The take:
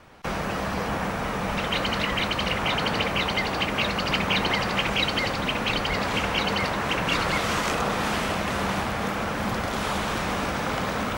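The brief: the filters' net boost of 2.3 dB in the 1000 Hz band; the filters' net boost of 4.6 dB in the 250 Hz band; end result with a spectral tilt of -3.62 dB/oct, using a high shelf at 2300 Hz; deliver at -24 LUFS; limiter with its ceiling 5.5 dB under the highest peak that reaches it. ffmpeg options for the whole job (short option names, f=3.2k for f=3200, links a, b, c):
-af "equalizer=f=250:t=o:g=6,equalizer=f=1k:t=o:g=3.5,highshelf=f=2.3k:g=-4.5,volume=1.5dB,alimiter=limit=-14.5dB:level=0:latency=1"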